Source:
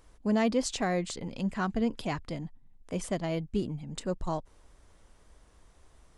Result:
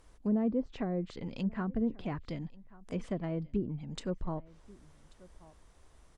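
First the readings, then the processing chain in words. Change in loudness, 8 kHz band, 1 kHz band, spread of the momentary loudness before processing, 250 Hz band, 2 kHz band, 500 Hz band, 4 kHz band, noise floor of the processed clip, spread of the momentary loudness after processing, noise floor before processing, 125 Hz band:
-3.5 dB, -18.0 dB, -9.0 dB, 10 LU, -2.0 dB, -11.0 dB, -5.5 dB, -11.0 dB, -61 dBFS, 10 LU, -61 dBFS, -1.5 dB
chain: low-pass that closes with the level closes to 640 Hz, closed at -25 dBFS; on a send: delay 1136 ms -23.5 dB; on the sum: dynamic bell 760 Hz, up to -6 dB, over -47 dBFS, Q 1.2; trim -1.5 dB

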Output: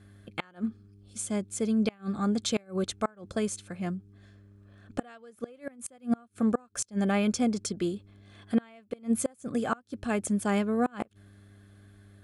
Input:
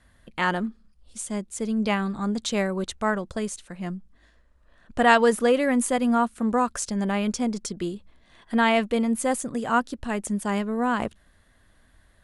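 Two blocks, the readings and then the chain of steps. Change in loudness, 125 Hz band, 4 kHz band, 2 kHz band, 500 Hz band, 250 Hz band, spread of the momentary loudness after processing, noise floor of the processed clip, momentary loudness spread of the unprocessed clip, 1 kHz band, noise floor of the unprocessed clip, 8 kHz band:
-6.0 dB, -2.0 dB, -6.5 dB, -12.5 dB, -7.5 dB, -3.5 dB, 13 LU, -60 dBFS, 14 LU, -12.0 dB, -60 dBFS, -3.5 dB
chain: mains buzz 100 Hz, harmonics 4, -52 dBFS -9 dB/octave; inverted gate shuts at -14 dBFS, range -31 dB; comb of notches 950 Hz

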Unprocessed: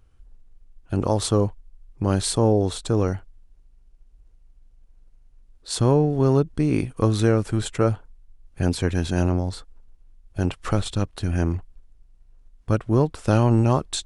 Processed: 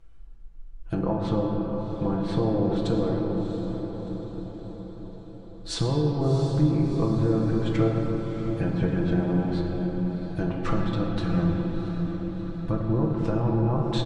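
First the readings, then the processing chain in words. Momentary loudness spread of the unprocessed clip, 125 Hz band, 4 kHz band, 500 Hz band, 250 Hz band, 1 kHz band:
9 LU, -2.5 dB, -6.0 dB, -4.0 dB, -0.5 dB, -4.0 dB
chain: low-pass that closes with the level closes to 1.2 kHz, closed at -17.5 dBFS; treble shelf 7.7 kHz -10 dB; comb 6 ms, depth 74%; compression, threshold -22 dBFS, peak gain reduction 10 dB; on a send: echo that smears into a reverb 697 ms, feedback 55%, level -9.5 dB; on the sum: simulated room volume 210 m³, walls hard, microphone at 0.5 m; trim -1.5 dB

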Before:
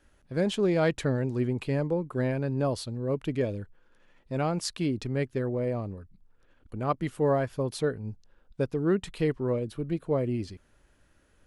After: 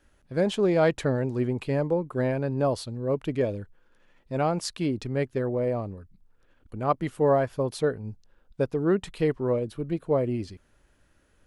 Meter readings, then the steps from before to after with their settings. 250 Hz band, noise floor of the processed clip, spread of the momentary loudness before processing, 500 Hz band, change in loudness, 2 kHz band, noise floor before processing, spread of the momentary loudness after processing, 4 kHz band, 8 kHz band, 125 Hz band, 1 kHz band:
+1.0 dB, -64 dBFS, 9 LU, +3.5 dB, +2.5 dB, +1.5 dB, -64 dBFS, 10 LU, 0.0 dB, 0.0 dB, +0.5 dB, +4.5 dB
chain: dynamic bell 730 Hz, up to +5 dB, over -37 dBFS, Q 0.76

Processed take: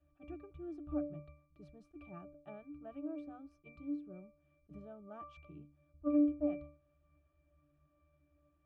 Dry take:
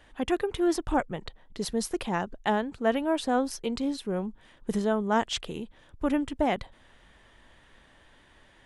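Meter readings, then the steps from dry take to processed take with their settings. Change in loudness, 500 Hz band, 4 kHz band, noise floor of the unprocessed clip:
-10.5 dB, -16.0 dB, under -35 dB, -58 dBFS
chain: pitch-class resonator D, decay 0.44 s; attacks held to a fixed rise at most 480 dB/s; trim +1.5 dB

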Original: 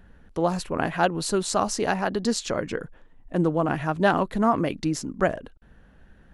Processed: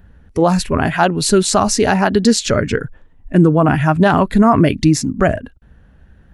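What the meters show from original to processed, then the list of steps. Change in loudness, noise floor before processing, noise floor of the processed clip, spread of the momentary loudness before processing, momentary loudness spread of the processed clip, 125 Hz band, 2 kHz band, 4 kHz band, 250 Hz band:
+11.0 dB, -54 dBFS, -48 dBFS, 8 LU, 6 LU, +14.0 dB, +9.0 dB, +11.0 dB, +12.5 dB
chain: spectral noise reduction 10 dB; peaking EQ 80 Hz +9.5 dB 1.8 oct; loudness maximiser +13 dB; trim -1 dB

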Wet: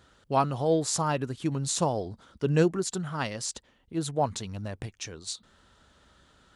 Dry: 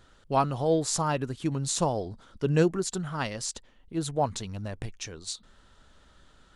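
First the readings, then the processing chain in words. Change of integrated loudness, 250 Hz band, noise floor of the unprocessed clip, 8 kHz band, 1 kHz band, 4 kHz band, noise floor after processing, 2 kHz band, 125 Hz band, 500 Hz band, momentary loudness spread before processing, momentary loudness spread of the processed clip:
0.0 dB, 0.0 dB, -60 dBFS, 0.0 dB, 0.0 dB, 0.0 dB, -65 dBFS, 0.0 dB, 0.0 dB, 0.0 dB, 13 LU, 13 LU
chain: high-pass 56 Hz

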